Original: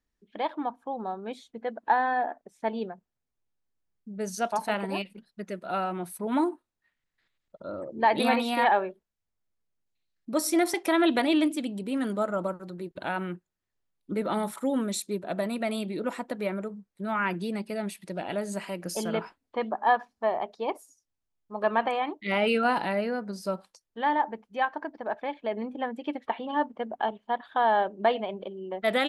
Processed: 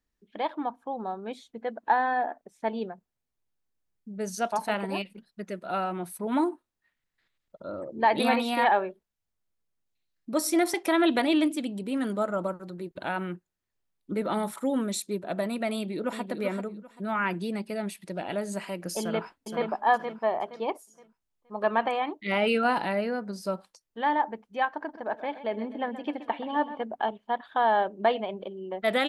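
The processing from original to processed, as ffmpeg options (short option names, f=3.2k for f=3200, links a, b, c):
-filter_complex "[0:a]asplit=2[a][b];[b]afade=t=in:st=15.73:d=0.01,afade=t=out:st=16.26:d=0.01,aecho=0:1:390|780|1170:0.421697|0.105424|0.026356[c];[a][c]amix=inputs=2:normalize=0,asplit=2[d][e];[e]afade=t=in:st=18.99:d=0.01,afade=t=out:st=19.71:d=0.01,aecho=0:1:470|940|1410|1880:0.530884|0.159265|0.0477796|0.0143339[f];[d][f]amix=inputs=2:normalize=0,asettb=1/sr,asplit=3[g][h][i];[g]atrim=end=24.684[j];[h]atrim=start=24.68:end=26.83,asetpts=PTS-STARTPTS,afade=t=in:d=0.004:c=qsin,afade=t=out:st=2.146:d=0.004:c=qsin,aecho=1:1:127|254|381|508|635|762:0.2|0.116|0.0671|0.0389|0.0226|0.0131,atrim=end_sample=94815[k];[i]atrim=start=26.826[l];[j][k]acrossfade=d=0.004:c1=hsin:c2=qsin[m];[m][l]acrossfade=d=0.004:c1=qsin:c2=hsin"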